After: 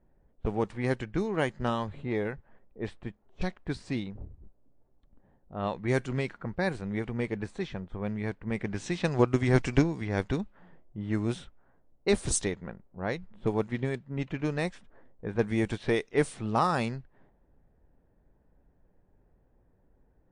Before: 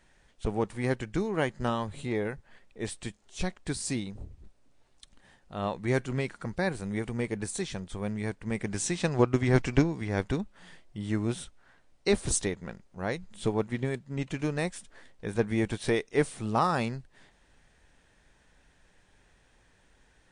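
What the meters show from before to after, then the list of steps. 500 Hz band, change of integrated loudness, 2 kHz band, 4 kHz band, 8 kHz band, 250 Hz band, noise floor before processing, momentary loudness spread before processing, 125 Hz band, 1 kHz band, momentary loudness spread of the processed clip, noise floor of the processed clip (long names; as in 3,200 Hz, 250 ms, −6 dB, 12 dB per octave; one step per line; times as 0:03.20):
0.0 dB, 0.0 dB, 0.0 dB, −2.0 dB, −3.0 dB, 0.0 dB, −64 dBFS, 13 LU, 0.0 dB, 0.0 dB, 13 LU, −67 dBFS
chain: low-pass that shuts in the quiet parts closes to 560 Hz, open at −23 dBFS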